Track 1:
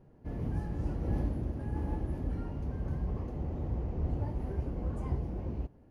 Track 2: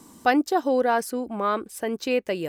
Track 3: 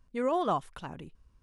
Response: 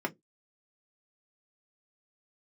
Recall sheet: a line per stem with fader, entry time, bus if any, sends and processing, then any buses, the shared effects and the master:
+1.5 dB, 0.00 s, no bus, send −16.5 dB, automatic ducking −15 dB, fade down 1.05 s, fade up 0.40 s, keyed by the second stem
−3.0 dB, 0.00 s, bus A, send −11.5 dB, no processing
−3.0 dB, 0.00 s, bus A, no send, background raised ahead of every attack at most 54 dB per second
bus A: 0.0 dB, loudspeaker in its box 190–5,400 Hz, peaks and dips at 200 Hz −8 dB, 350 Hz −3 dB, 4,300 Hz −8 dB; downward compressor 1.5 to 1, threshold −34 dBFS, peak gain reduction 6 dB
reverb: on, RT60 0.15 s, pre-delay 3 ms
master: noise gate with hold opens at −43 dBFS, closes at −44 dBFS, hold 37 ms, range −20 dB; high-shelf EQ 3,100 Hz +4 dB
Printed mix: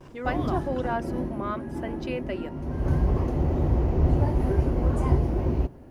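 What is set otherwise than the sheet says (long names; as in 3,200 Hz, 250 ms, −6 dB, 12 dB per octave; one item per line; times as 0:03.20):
stem 1 +1.5 dB → +11.5 dB
stem 2 −3.0 dB → −10.0 dB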